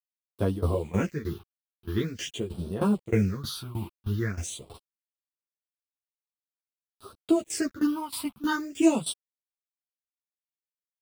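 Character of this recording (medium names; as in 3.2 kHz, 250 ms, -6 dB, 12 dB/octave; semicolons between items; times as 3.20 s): a quantiser's noise floor 8-bit, dither none; phasing stages 6, 0.46 Hz, lowest notch 450–2000 Hz; tremolo saw down 3.2 Hz, depth 90%; a shimmering, thickened sound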